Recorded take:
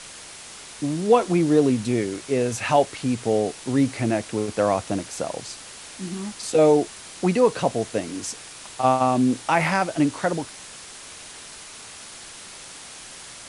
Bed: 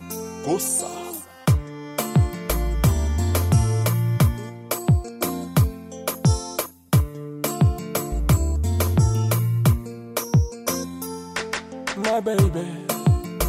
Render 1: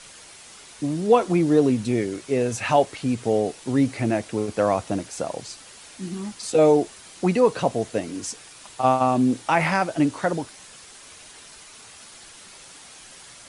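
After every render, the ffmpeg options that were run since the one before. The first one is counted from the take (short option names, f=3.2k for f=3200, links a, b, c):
-af "afftdn=nr=6:nf=-41"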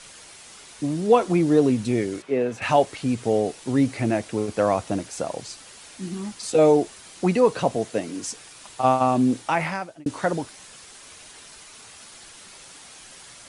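-filter_complex "[0:a]asettb=1/sr,asplit=3[a][b][c];[a]atrim=end=2.224[d];[b]atrim=start=2.22:end=2.62,asetpts=PTS-STARTPTS,afade=t=in:d=0.004:c=qsin,afade=t=out:st=0.396:d=0.004:c=qsin,acrossover=split=170 3200:gain=0.224 1 0.158[e][f][g];[e][f][g]amix=inputs=3:normalize=0[h];[c]atrim=start=2.616[i];[d][h]acrossfade=d=0.004:c1=hsin:c2=qsin[j];[j][i]acrossfade=d=0.004:c1=qsin:c2=hsin,asettb=1/sr,asplit=3[k][l][m];[k]atrim=end=7.764[n];[l]atrim=start=7.76:end=8.28,asetpts=PTS-STARTPTS,afade=t=in:d=0.004:c=qsin,afade=t=out:st=0.516:d=0.004:c=qsin,highpass=120[o];[m]atrim=start=8.276[p];[n][o]acrossfade=d=0.004:c1=hsin:c2=qsin[q];[q][p]acrossfade=d=0.004:c1=qsin:c2=hsin,asplit=2[r][s];[r]atrim=end=10.06,asetpts=PTS-STARTPTS,afade=t=out:st=9.36:d=0.7[t];[s]atrim=start=10.06,asetpts=PTS-STARTPTS,afade=t=in:d=0.004:c=hsin[u];[t][u]concat=n=2:v=0:a=1"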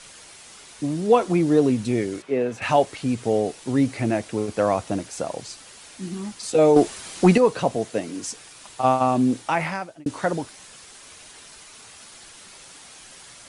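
-filter_complex "[0:a]asettb=1/sr,asplit=3[a][b][c];[a]atrim=end=6.764[d];[b]atrim=start=6.76:end=7.38,asetpts=PTS-STARTPTS,afade=t=in:d=0.004:c=qsin,afade=t=out:st=0.616:d=0.004:c=qsin,acontrast=85[e];[c]atrim=start=7.376[f];[d][e]acrossfade=d=0.004:c1=hsin:c2=qsin[g];[g][f]acrossfade=d=0.004:c1=qsin:c2=hsin"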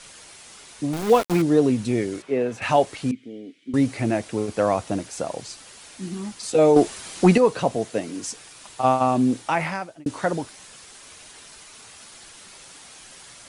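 -filter_complex "[0:a]asettb=1/sr,asplit=3[a][b][c];[a]atrim=end=0.934[d];[b]atrim=start=0.93:end=1.42,asetpts=PTS-STARTPTS,afade=t=in:d=0.004:c=qsin,afade=t=out:st=0.486:d=0.004:c=qsin,aeval=exprs='val(0)*gte(abs(val(0)),0.0562)':c=same[e];[c]atrim=start=1.416[f];[d][e]acrossfade=d=0.004:c1=hsin:c2=qsin[g];[g][f]acrossfade=d=0.004:c1=qsin:c2=hsin,asettb=1/sr,asplit=3[h][i][j];[h]atrim=end=3.114[k];[i]atrim=start=3.11:end=3.74,asetpts=PTS-STARTPTS,afade=t=in:d=0.004:c=qsin,afade=t=out:st=0.626:d=0.004:c=qsin,asplit=3[l][m][n];[l]bandpass=f=270:t=q:w=8,volume=0dB[o];[m]bandpass=f=2.29k:t=q:w=8,volume=-6dB[p];[n]bandpass=f=3.01k:t=q:w=8,volume=-9dB[q];[o][p][q]amix=inputs=3:normalize=0[r];[j]atrim=start=3.736[s];[k][r]acrossfade=d=0.004:c1=hsin:c2=qsin[t];[t][s]acrossfade=d=0.004:c1=qsin:c2=hsin"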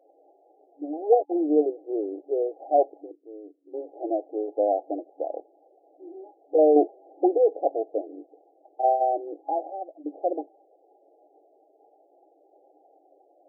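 -af "aemphasis=mode=production:type=bsi,afftfilt=real='re*between(b*sr/4096,290,830)':imag='im*between(b*sr/4096,290,830)':win_size=4096:overlap=0.75"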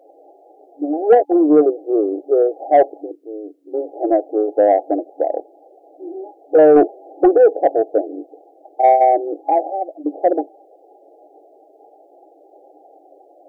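-filter_complex "[0:a]asplit=2[a][b];[b]alimiter=limit=-15.5dB:level=0:latency=1:release=36,volume=-0.5dB[c];[a][c]amix=inputs=2:normalize=0,acontrast=51"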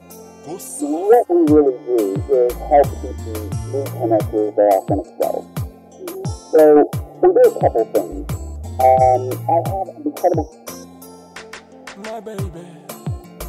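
-filter_complex "[1:a]volume=-7.5dB[a];[0:a][a]amix=inputs=2:normalize=0"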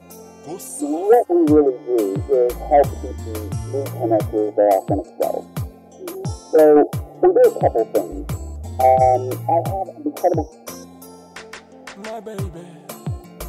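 -af "volume=-1.5dB"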